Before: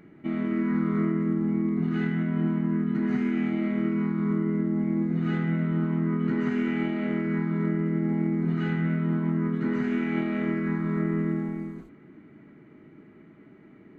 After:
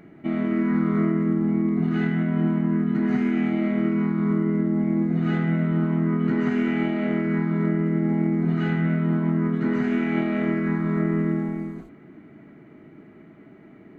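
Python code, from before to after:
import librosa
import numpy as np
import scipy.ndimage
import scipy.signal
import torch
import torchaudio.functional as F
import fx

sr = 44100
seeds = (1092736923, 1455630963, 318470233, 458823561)

y = fx.peak_eq(x, sr, hz=690.0, db=7.5, octaves=0.28)
y = y * librosa.db_to_amplitude(3.5)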